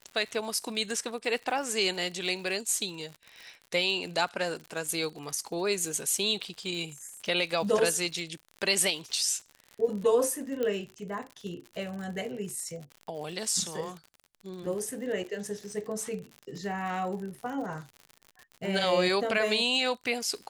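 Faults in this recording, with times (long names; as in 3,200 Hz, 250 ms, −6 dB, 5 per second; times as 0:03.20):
surface crackle 73 per second −37 dBFS
0:10.63: click −18 dBFS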